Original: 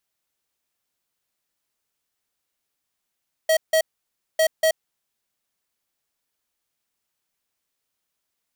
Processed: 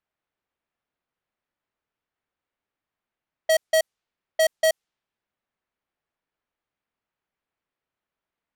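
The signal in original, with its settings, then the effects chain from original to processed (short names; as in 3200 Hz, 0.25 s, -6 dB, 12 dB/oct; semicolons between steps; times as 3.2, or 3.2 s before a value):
beep pattern square 639 Hz, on 0.08 s, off 0.16 s, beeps 2, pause 0.58 s, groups 2, -17.5 dBFS
low-pass opened by the level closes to 2100 Hz, open at -20 dBFS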